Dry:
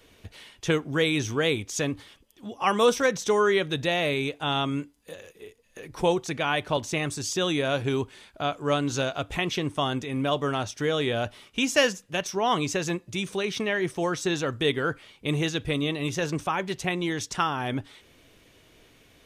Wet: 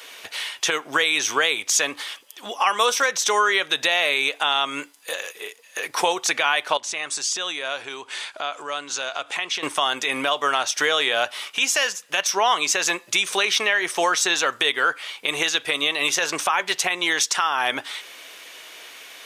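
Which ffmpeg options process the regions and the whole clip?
-filter_complex "[0:a]asettb=1/sr,asplit=3[a][b][c];[a]atrim=end=6.774[d];[b]atrim=start=6.77:end=9.63,asetpts=PTS-STARTPTS,afade=t=in:d=0.004:c=qsin,afade=t=out:st=2.856:d=0.004:c=qsin,acompressor=threshold=-41dB:ratio=4:attack=3.2:release=140:knee=1:detection=peak,lowpass=f=9.9k:w=0.5412,lowpass=f=9.9k:w=1.3066[e];[c]atrim=start=9.626[f];[d][e]acrossfade=d=0.004:c1=hsin:c2=qsin[g];[g][f]acrossfade=d=0.004:c1=qsin:c2=hsin,highpass=890,acompressor=threshold=-36dB:ratio=4,alimiter=level_in=25.5dB:limit=-1dB:release=50:level=0:latency=1,volume=-7dB"

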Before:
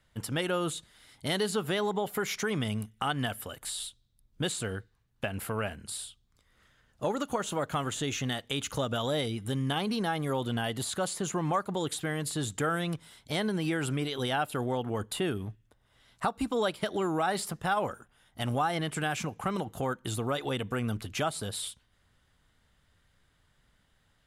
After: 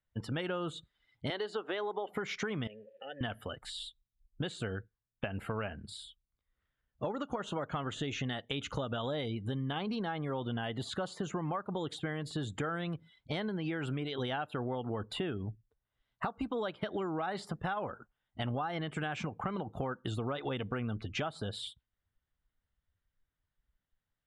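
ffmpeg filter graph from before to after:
-filter_complex "[0:a]asettb=1/sr,asplit=3[a][b][c];[a]atrim=end=1.304[d];[b]atrim=start=1.3:end=2.09,asetpts=PTS-STARTPTS,afade=t=in:d=0.004:c=qsin,afade=t=out:st=0.786:d=0.004:c=qsin,highpass=f=300:w=0.5412,highpass=f=300:w=1.3066,highshelf=f=6.8k:g=-7.5[e];[c]atrim=start=2.086[f];[d][e]acrossfade=d=0.004:c1=hsin:c2=qsin[g];[g][f]acrossfade=d=0.004:c1=qsin:c2=hsin,asettb=1/sr,asplit=3[h][i][j];[h]atrim=end=2.674[k];[i]atrim=start=2.67:end=3.21,asetpts=PTS-STARTPTS,afade=t=in:d=0.004:c=qsin,afade=t=out:st=0.536:d=0.004:c=qsin,aeval=exprs='val(0)+0.5*0.0168*sgn(val(0))':c=same,asplit=3[l][m][n];[l]bandpass=f=530:t=q:w=8,volume=0dB[o];[m]bandpass=f=1.84k:t=q:w=8,volume=-6dB[p];[n]bandpass=f=2.48k:t=q:w=8,volume=-9dB[q];[o][p][q]amix=inputs=3:normalize=0,lowshelf=f=68:g=-6.5[r];[j]atrim=start=3.206[s];[k][r]acrossfade=d=0.004:c1=hsin:c2=qsin[t];[t][s]acrossfade=d=0.004:c1=qsin:c2=hsin,afftdn=nr=22:nf=-48,lowpass=3.7k,acompressor=threshold=-34dB:ratio=6,volume=1.5dB"

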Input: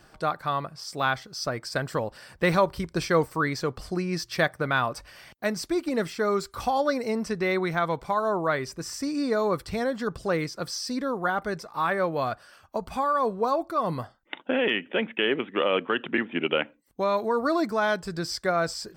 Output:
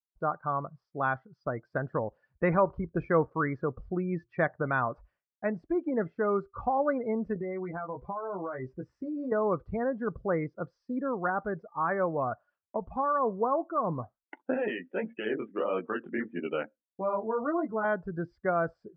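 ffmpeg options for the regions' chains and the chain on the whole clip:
-filter_complex "[0:a]asettb=1/sr,asplit=3[a][b][c];[a]atrim=end=7.344[d];[b]atrim=start=7.34:end=9.32,asetpts=PTS-STARTPTS,afade=t=in:d=0.004:c=qsin,afade=t=out:st=1.976:d=0.004:c=qsin,asplit=2[e][f];[f]adelay=16,volume=-4dB[g];[e][g]amix=inputs=2:normalize=0,atrim=end_sample=87318,acompressor=threshold=-28dB:ratio=10:attack=3.2:release=140:knee=1:detection=peak[h];[c]atrim=start=9.316[i];[d][h]acrossfade=d=0.004:c1=hsin:c2=qsin[j];[j][i]acrossfade=d=0.004:c1=qsin:c2=hsin,asettb=1/sr,asplit=3[k][l][m];[k]atrim=end=14.544[n];[l]atrim=start=14.54:end=17.85,asetpts=PTS-STARTPTS,afade=t=in:d=0.004:c=qsin,afade=t=out:st=3.306:d=0.004:c=qsin,flanger=delay=16.5:depth=6.4:speed=1.6,highshelf=f=5.8k:g=5.5[o];[m]atrim=start=17.846[p];[n][o]acrossfade=d=0.004:c1=hsin:c2=qsin[q];[q][p]acrossfade=d=0.004:c1=qsin:c2=hsin,lowpass=1.7k,afftdn=nr=25:nf=-36,agate=range=-33dB:threshold=-55dB:ratio=3:detection=peak,volume=-2.5dB"

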